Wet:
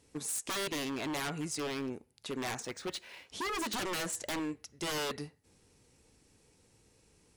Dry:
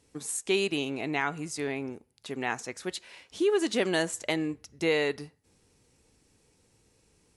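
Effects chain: 4.39–4.98 low shelf 360 Hz -7 dB; wavefolder -30 dBFS; 2.62–3.27 decimation joined by straight lines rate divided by 3×

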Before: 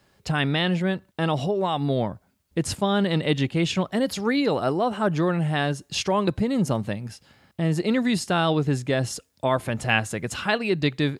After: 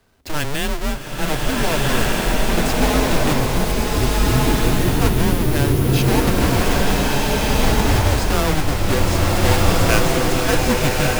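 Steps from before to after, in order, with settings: half-waves squared off; frequency shift -150 Hz; spectral gain 3.38–4.88, 490–9000 Hz -14 dB; bloom reverb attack 1.59 s, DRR -5.5 dB; gain -2.5 dB

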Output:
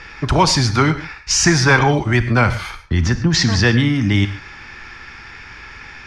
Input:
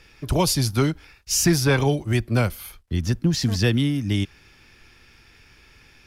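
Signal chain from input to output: LPF 6700 Hz 24 dB/oct; band shelf 1300 Hz +9 dB; in parallel at -1.5 dB: negative-ratio compressor -27 dBFS, ratio -1; on the sum: non-linear reverb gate 0.16 s flat, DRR 10.5 dB; gain +2.5 dB

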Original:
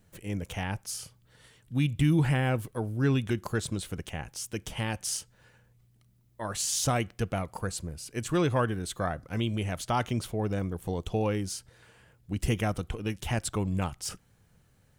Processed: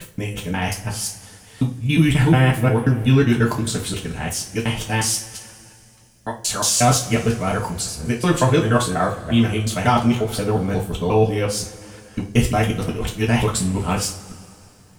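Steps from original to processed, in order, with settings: local time reversal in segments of 0.179 s; two-slope reverb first 0.29 s, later 2.7 s, from -22 dB, DRR -2 dB; gain +7.5 dB

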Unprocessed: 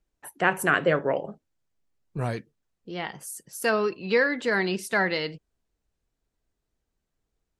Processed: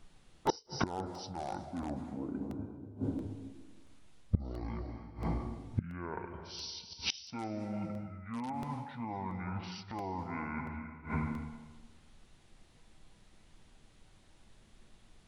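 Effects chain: in parallel at -10 dB: wrapped overs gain 12.5 dB; on the sum: plate-style reverb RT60 0.7 s, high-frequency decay 0.8×, pre-delay 90 ms, DRR 9 dB; reverse; compressor 16:1, threshold -27 dBFS, peak gain reduction 13 dB; reverse; wide varispeed 0.497×; flipped gate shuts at -34 dBFS, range -26 dB; crackling interface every 0.68 s, samples 64, repeat, from 0.47; gain +17.5 dB

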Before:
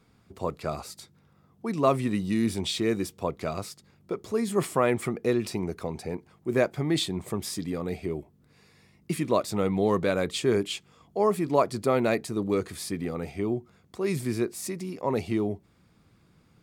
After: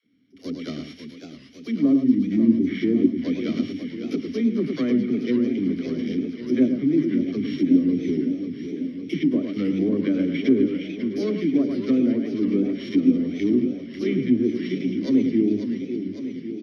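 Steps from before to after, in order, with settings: sample sorter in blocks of 8 samples; bell 7700 Hz -5.5 dB 0.25 oct; notch 2500 Hz, Q 12; echo 0.106 s -7 dB; AGC gain up to 11 dB; vowel filter i; dispersion lows, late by 55 ms, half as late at 340 Hz; treble ducked by the level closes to 850 Hz, closed at -25 dBFS; on a send: thin delay 0.218 s, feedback 82%, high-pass 2100 Hz, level -14 dB; on the sum: warbling echo 0.55 s, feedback 66%, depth 183 cents, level -9 dB; gain +8 dB

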